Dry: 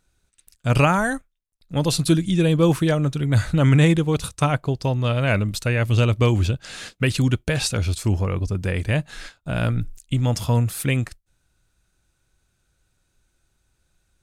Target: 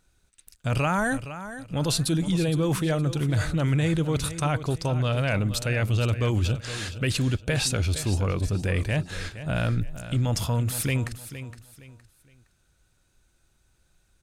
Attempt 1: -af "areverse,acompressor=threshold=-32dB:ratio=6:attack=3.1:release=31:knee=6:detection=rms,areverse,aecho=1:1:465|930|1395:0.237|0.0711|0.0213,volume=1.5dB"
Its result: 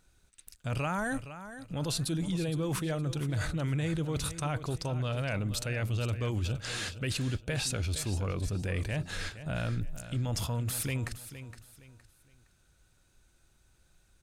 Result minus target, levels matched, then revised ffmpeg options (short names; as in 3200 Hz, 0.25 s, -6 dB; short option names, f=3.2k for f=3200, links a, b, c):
compressor: peak gain reduction +8 dB
-af "areverse,acompressor=threshold=-22.5dB:ratio=6:attack=3.1:release=31:knee=6:detection=rms,areverse,aecho=1:1:465|930|1395:0.237|0.0711|0.0213,volume=1.5dB"